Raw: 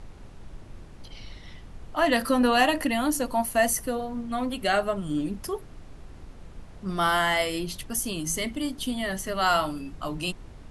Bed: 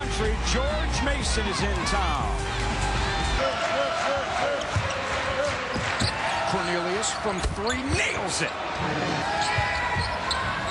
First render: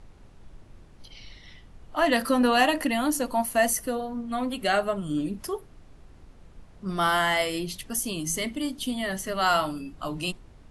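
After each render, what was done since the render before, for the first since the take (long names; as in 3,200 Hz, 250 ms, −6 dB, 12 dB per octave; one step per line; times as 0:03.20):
noise reduction from a noise print 6 dB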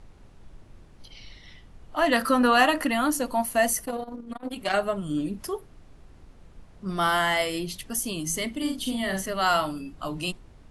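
0:02.13–0:03.15: parametric band 1,300 Hz +7.5 dB 0.61 octaves
0:03.84–0:04.74: saturating transformer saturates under 850 Hz
0:08.57–0:09.26: double-tracking delay 47 ms −4 dB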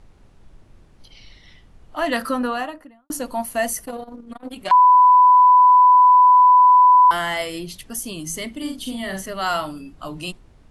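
0:02.13–0:03.10: fade out and dull
0:04.71–0:07.11: beep over 997 Hz −8 dBFS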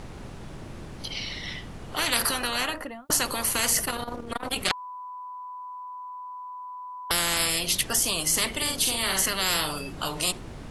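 every bin compressed towards the loudest bin 10 to 1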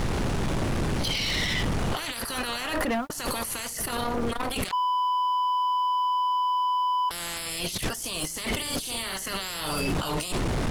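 compressor whose output falls as the input rises −38 dBFS, ratio −1
leveller curve on the samples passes 3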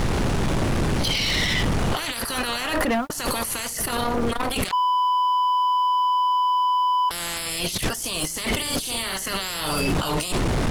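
level +4.5 dB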